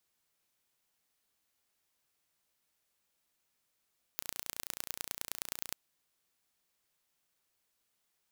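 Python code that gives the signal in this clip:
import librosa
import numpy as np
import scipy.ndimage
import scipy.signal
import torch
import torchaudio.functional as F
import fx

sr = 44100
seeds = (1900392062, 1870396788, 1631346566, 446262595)

y = fx.impulse_train(sr, length_s=1.56, per_s=29.3, accent_every=3, level_db=-8.0)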